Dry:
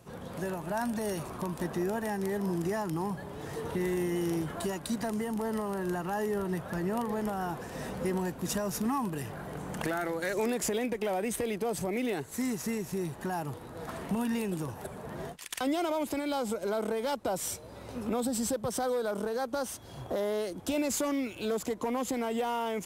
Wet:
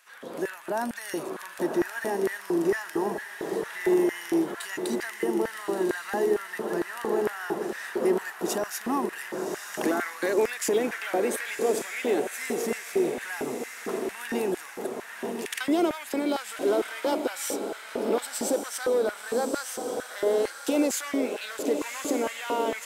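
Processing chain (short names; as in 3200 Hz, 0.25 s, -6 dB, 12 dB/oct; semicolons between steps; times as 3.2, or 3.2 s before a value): diffused feedback echo 1.128 s, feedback 49%, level -5.5 dB; LFO high-pass square 2.2 Hz 340–1700 Hz; gain +2 dB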